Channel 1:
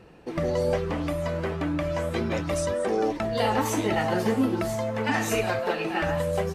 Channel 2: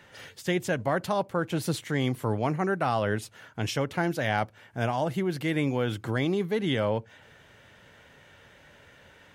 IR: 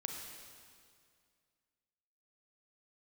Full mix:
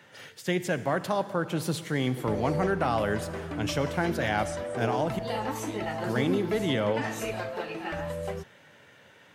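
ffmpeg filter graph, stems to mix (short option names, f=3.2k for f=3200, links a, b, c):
-filter_complex "[0:a]adelay=1900,volume=-7.5dB[a];[1:a]highpass=f=110:w=0.5412,highpass=f=110:w=1.3066,volume=-3.5dB,asplit=3[b][c][d];[b]atrim=end=5.19,asetpts=PTS-STARTPTS,afade=t=out:st=5.186:d=0.004:c=hsin[e];[c]atrim=start=5.19:end=6.03,asetpts=PTS-STARTPTS,volume=0[f];[d]atrim=start=6.03,asetpts=PTS-STARTPTS,afade=t=in:d=0.004:c=hsin[g];[e][f][g]concat=n=3:v=0:a=1,asplit=2[h][i];[i]volume=-5.5dB[j];[2:a]atrim=start_sample=2205[k];[j][k]afir=irnorm=-1:irlink=0[l];[a][h][l]amix=inputs=3:normalize=0"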